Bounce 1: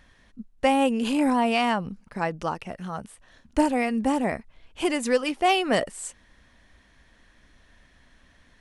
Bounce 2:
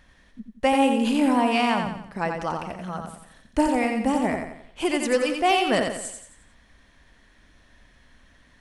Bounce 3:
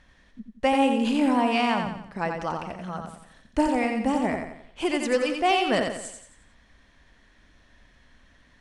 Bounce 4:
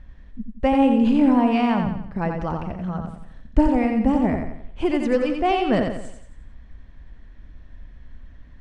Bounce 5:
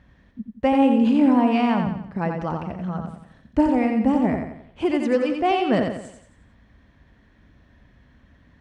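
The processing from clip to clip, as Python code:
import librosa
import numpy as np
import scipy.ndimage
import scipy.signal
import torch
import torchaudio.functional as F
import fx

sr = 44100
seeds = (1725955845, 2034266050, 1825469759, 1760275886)

y1 = fx.echo_feedback(x, sr, ms=88, feedback_pct=43, wet_db=-5.0)
y2 = scipy.signal.sosfilt(scipy.signal.butter(2, 8200.0, 'lowpass', fs=sr, output='sos'), y1)
y2 = F.gain(torch.from_numpy(y2), -1.5).numpy()
y3 = fx.riaa(y2, sr, side='playback')
y4 = scipy.signal.sosfilt(scipy.signal.butter(2, 100.0, 'highpass', fs=sr, output='sos'), y3)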